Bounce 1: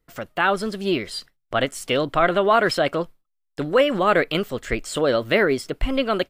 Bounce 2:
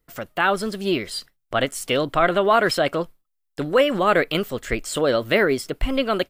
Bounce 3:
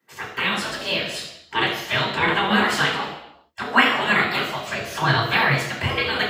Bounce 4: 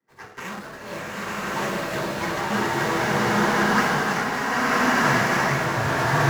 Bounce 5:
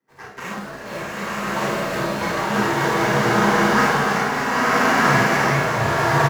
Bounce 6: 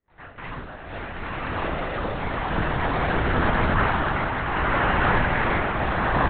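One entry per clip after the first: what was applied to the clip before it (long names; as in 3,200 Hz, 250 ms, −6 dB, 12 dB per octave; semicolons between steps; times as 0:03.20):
high-shelf EQ 9,900 Hz +8 dB
gate on every frequency bin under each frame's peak −15 dB weak; convolution reverb RT60 0.85 s, pre-delay 3 ms, DRR −6.5 dB; level −4 dB
running median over 15 samples; slow-attack reverb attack 1,200 ms, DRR −9 dB; level −7 dB
parametric band 480 Hz +2.5 dB 2.9 octaves; on a send: ambience of single reflections 35 ms −5 dB, 50 ms −5 dB
linear-prediction vocoder at 8 kHz whisper; level −4 dB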